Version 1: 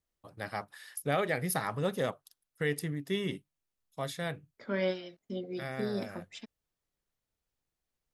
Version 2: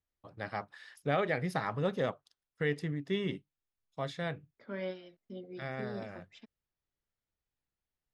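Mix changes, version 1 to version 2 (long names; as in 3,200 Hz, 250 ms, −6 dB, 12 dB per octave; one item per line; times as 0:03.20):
second voice −7.0 dB
master: add high-frequency loss of the air 120 metres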